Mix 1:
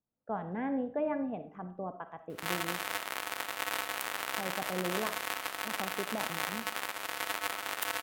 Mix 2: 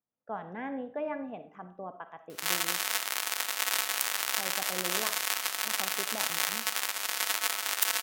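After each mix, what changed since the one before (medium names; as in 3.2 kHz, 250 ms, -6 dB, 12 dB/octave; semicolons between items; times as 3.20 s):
background: add peaking EQ 5.7 kHz +5.5 dB 1.2 oct; master: add tilt EQ +2.5 dB/octave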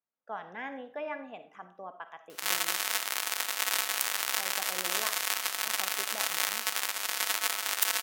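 speech: add tilt EQ +4 dB/octave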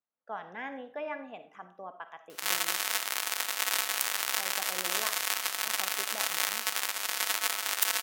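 no change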